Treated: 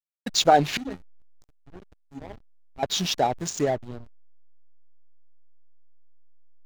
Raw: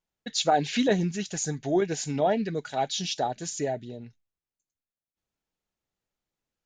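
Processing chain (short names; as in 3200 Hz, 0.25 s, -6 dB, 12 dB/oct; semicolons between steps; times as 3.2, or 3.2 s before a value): 0.77–2.83 resonator 270 Hz, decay 0.41 s, harmonics odd, mix 90%; backlash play -31.5 dBFS; gain +6 dB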